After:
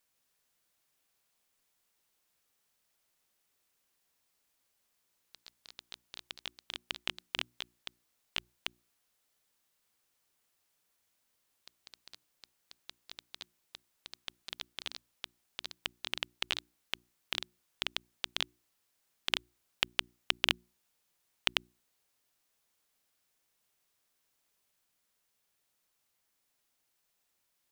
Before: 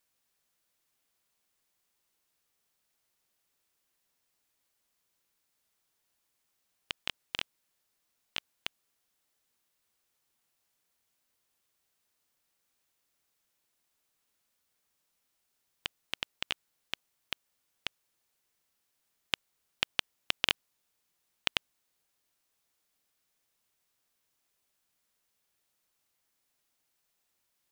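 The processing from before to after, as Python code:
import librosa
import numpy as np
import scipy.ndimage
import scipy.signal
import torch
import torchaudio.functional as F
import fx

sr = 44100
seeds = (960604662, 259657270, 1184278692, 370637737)

y = fx.echo_pitch(x, sr, ms=154, semitones=2, count=3, db_per_echo=-6.0)
y = fx.hum_notches(y, sr, base_hz=60, count=6)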